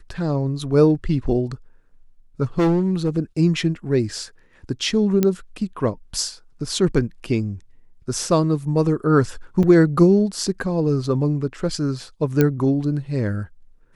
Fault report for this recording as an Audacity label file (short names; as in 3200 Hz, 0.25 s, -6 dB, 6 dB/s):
2.590000	3.100000	clipped -14.5 dBFS
5.230000	5.230000	pop -6 dBFS
9.630000	9.630000	gap 4.8 ms
12.410000	12.410000	pop -5 dBFS